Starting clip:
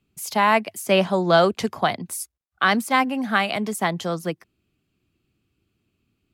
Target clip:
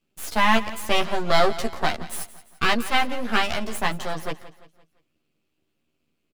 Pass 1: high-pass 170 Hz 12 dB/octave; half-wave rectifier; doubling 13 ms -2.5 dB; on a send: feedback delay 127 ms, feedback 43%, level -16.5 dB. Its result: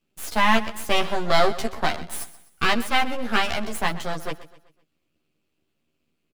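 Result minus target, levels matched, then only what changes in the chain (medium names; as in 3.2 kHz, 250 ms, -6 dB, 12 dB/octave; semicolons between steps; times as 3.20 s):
echo 44 ms early
change: feedback delay 171 ms, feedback 43%, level -16.5 dB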